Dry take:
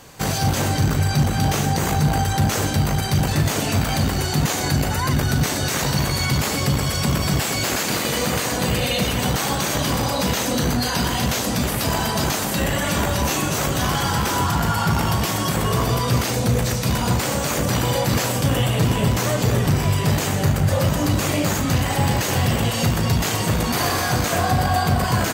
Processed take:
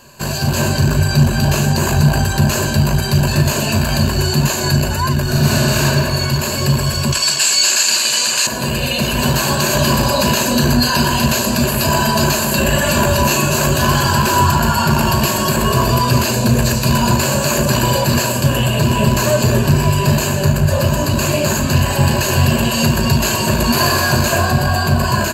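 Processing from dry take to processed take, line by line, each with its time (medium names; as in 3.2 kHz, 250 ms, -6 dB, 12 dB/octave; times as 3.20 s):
5.22–5.84 s: reverb throw, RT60 2.2 s, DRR -7.5 dB
7.12–8.47 s: frequency weighting ITU-R 468
whole clip: rippled EQ curve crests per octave 1.4, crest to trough 12 dB; level rider; band-stop 1.9 kHz, Q 9.7; trim -1 dB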